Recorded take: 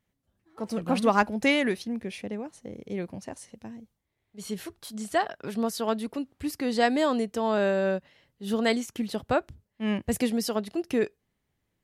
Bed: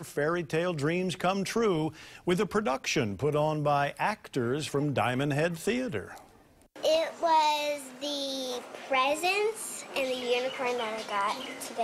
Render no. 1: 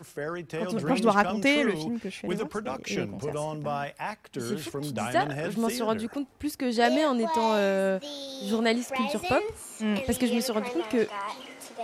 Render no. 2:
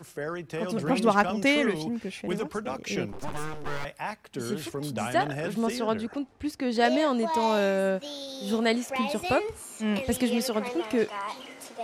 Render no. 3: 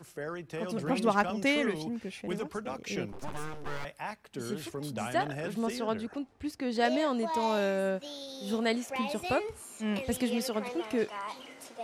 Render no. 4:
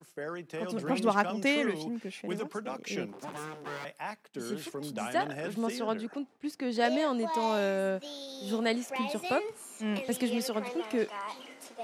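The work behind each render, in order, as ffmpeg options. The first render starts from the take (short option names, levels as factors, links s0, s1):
-filter_complex "[1:a]volume=0.562[s0];[0:a][s0]amix=inputs=2:normalize=0"
-filter_complex "[0:a]asettb=1/sr,asplit=3[s0][s1][s2];[s0]atrim=end=3.124[s3];[s1]atrim=start=3.12:end=3.85,asetpts=PTS-STARTPTS,afade=t=in:d=0.004:c=qsin,afade=t=out:st=0.726:d=0.004:c=qsin,aeval=exprs='abs(val(0))':c=same[s4];[s2]atrim=start=3.846[s5];[s3][s4]acrossfade=d=0.004:c1=hsin:c2=qsin[s6];[s6][s5]acrossfade=d=0.004:c1=qsin:c2=hsin,asettb=1/sr,asplit=3[s7][s8][s9];[s7]atrim=end=5.594[s10];[s8]atrim=start=5.59:end=7.1,asetpts=PTS-STARTPTS,afade=t=in:d=0.004:c=qsin,afade=t=out:st=1.506:d=0.004:c=qsin,adynamicsmooth=sensitivity=4.5:basefreq=7700[s11];[s9]atrim=start=7.096[s12];[s10][s11]acrossfade=d=0.004:c1=hsin:c2=qsin[s13];[s13][s12]acrossfade=d=0.004:c1=qsin:c2=hsin"
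-af "volume=0.596"
-af "highpass=f=160:w=0.5412,highpass=f=160:w=1.3066,agate=range=0.0224:threshold=0.00398:ratio=3:detection=peak"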